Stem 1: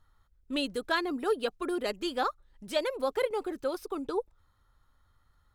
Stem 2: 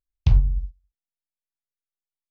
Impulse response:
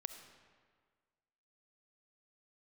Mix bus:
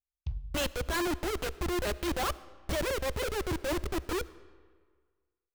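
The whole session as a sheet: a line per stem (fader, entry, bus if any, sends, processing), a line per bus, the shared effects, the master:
+2.0 dB, 0.00 s, send -5 dB, steep high-pass 310 Hz 96 dB/oct; Schmitt trigger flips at -38.5 dBFS
-17.0 dB, 0.00 s, send -10 dB, compressor, threshold -18 dBFS, peak gain reduction 8 dB; auto duck -18 dB, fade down 1.00 s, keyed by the first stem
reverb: on, RT60 1.7 s, pre-delay 25 ms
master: bell 64 Hz +13 dB 0.7 oct; notch 460 Hz, Q 12; limiter -25 dBFS, peak gain reduction 5 dB

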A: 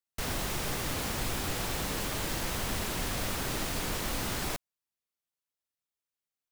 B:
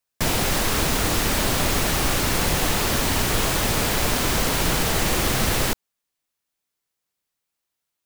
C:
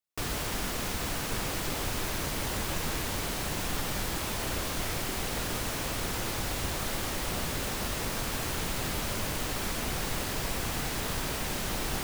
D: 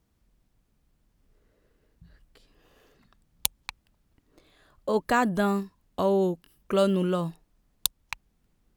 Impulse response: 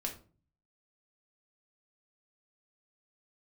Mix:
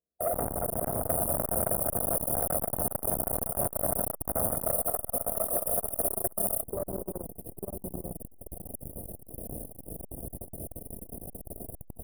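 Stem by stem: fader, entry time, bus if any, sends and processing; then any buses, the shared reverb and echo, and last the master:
-1.5 dB, 0.15 s, no bus, no send, echo send -15.5 dB, notch comb 320 Hz
+2.0 dB, 0.00 s, bus A, send -14 dB, echo send -7 dB, steep high-pass 600 Hz 48 dB/oct
-14.5 dB, 1.30 s, no bus, send -16 dB, echo send -5 dB, notch 3400 Hz, Q 18; requantised 6-bit, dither none
-10.0 dB, 0.00 s, bus A, send -10.5 dB, echo send -4.5 dB, HPF 63 Hz; compressor 4:1, threshold -31 dBFS, peak gain reduction 11.5 dB
bus A: 0.0 dB, speaker cabinet 390–3000 Hz, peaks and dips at 510 Hz +4 dB, 810 Hz -8 dB, 1300 Hz +7 dB, 1800 Hz +4 dB; limiter -19.5 dBFS, peak gain reduction 8.5 dB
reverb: on, RT60 0.40 s, pre-delay 4 ms
echo: echo 0.893 s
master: sample leveller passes 3; brick-wall FIR band-stop 730–8800 Hz; core saturation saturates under 1000 Hz

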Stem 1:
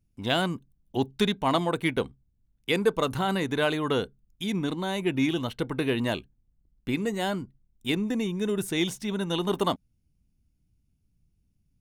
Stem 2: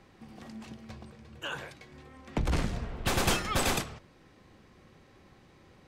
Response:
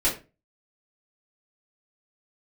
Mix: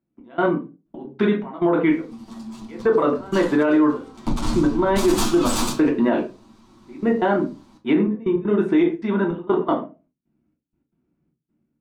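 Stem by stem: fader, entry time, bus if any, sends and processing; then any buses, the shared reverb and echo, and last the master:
-0.5 dB, 0.00 s, send -7 dB, Chebyshev band-pass 240–1400 Hz, order 2; AGC gain up to 7 dB; step gate "xx..xxx..x.xx" 158 bpm -24 dB
-0.5 dB, 1.90 s, send -11 dB, minimum comb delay 9 ms; graphic EQ 250/500/1000/2000/4000/8000 Hz +11/-10/+10/-10/+5/+5 dB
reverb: on, RT60 0.30 s, pre-delay 3 ms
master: limiter -9.5 dBFS, peak gain reduction 10.5 dB

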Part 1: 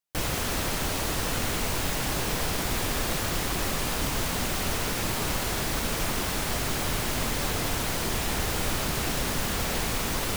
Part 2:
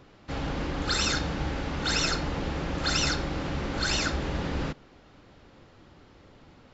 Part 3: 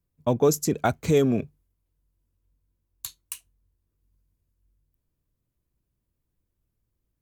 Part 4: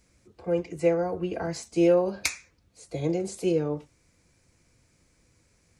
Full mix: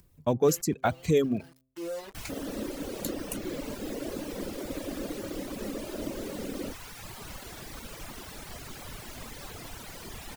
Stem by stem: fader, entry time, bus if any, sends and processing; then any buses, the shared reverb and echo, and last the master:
-11.0 dB, 2.00 s, no send, dry
+2.5 dB, 2.00 s, no send, elliptic band-pass 210–620 Hz
-2.5 dB, 0.00 s, no send, de-hum 130.8 Hz, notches 10
-7.0 dB, 0.00 s, no send, bit-crush 5-bit; soft clip -15 dBFS, distortion -19 dB; auto duck -10 dB, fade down 1.05 s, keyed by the third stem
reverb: off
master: reverb removal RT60 1.6 s; upward compressor, threshold -45 dBFS

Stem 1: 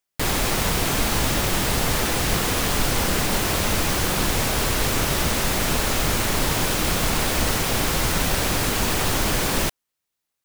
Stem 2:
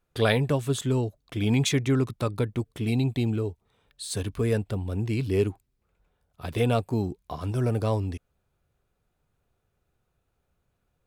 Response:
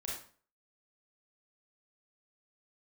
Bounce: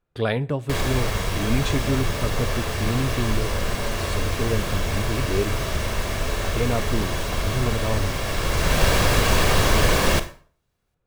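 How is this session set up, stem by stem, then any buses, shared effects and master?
+2.0 dB, 0.50 s, send -8 dB, high shelf 6400 Hz -10 dB; comb 1.8 ms, depth 35%; auto duck -17 dB, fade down 1.40 s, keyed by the second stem
-1.0 dB, 0.00 s, send -19 dB, high shelf 4900 Hz -12 dB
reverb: on, RT60 0.45 s, pre-delay 27 ms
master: dry

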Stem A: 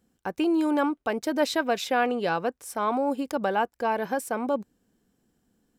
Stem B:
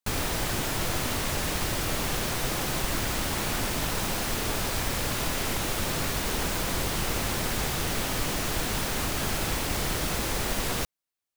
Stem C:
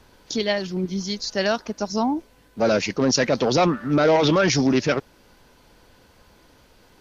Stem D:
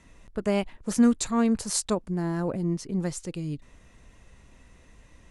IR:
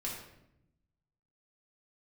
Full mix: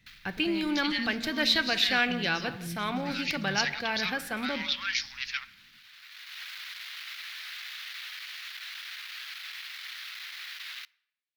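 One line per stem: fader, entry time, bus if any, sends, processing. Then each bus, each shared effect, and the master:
0.0 dB, 0.00 s, send -10 dB, echo send -15.5 dB, dry
-5.0 dB, 0.00 s, send -23 dB, no echo send, bell 2900 Hz +4.5 dB 2.8 oct; tube stage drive 27 dB, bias 0.6; ladder high-pass 950 Hz, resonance 35%; auto duck -18 dB, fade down 0.20 s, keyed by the first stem
-10.5 dB, 0.45 s, send -16 dB, no echo send, steep high-pass 920 Hz 48 dB/oct
-10.5 dB, 0.00 s, no send, echo send -7 dB, de-esser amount 85%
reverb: on, RT60 0.80 s, pre-delay 4 ms
echo: echo 0.172 s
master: graphic EQ 125/250/500/1000/2000/4000/8000 Hz +8/-6/-11/-10/+7/+10/-12 dB

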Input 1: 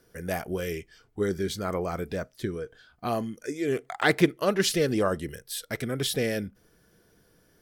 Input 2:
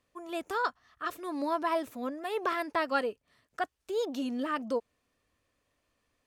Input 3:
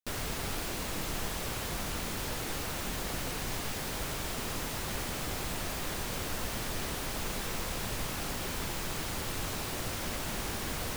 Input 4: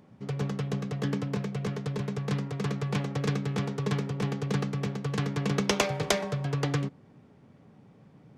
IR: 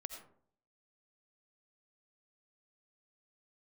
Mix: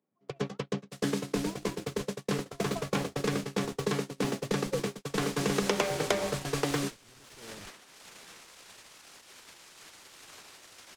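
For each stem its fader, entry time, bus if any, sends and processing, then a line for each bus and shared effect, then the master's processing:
-5.5 dB, 1.20 s, no send, limiter -19 dBFS, peak gain reduction 11 dB; flange 1.4 Hz, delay 8.3 ms, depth 9.9 ms, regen -81%; Schmitt trigger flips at -36 dBFS
-1.0 dB, 0.00 s, no send, vowel sequencer 1.6 Hz
-5.5 dB, 0.85 s, send -7.5 dB, LPF 7000 Hz 12 dB/oct; tilt +4.5 dB/oct; auto duck -11 dB, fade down 1.50 s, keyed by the second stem
-1.5 dB, 0.00 s, send -4.5 dB, HPF 220 Hz 12 dB/oct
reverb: on, RT60 0.60 s, pre-delay 45 ms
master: gate -31 dBFS, range -49 dB; bell 370 Hz +3 dB 0.98 oct; three-band squash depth 70%

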